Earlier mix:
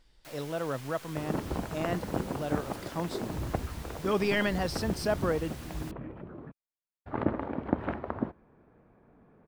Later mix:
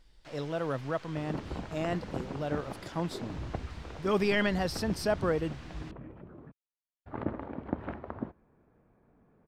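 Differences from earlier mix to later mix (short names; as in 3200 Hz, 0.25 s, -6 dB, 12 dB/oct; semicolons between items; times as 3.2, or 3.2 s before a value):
first sound: add air absorption 130 m; second sound -6.0 dB; master: add low shelf 140 Hz +3.5 dB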